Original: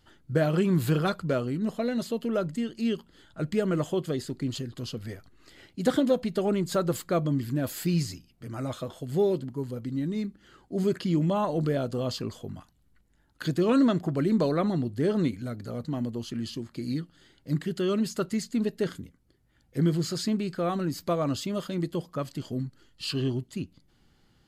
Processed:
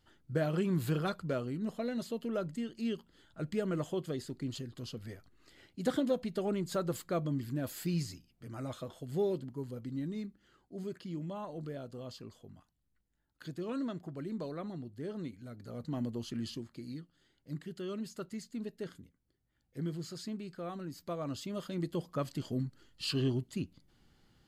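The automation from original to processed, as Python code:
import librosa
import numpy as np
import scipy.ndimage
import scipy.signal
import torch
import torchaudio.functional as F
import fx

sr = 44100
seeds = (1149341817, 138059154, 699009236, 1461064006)

y = fx.gain(x, sr, db=fx.line((10.02, -7.5), (10.89, -15.0), (15.34, -15.0), (15.98, -5.0), (16.51, -5.0), (16.92, -13.0), (20.95, -13.0), (22.19, -3.0)))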